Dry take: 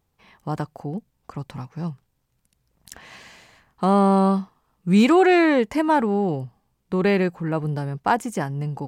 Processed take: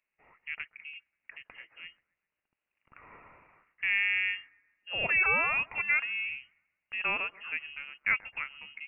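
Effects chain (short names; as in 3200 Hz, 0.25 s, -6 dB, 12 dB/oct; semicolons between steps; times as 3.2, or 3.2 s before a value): HPF 440 Hz 12 dB/oct; on a send: thin delay 0.133 s, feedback 46%, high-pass 1500 Hz, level -19.5 dB; on the sum: inverted band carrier 3000 Hz; gain -7.5 dB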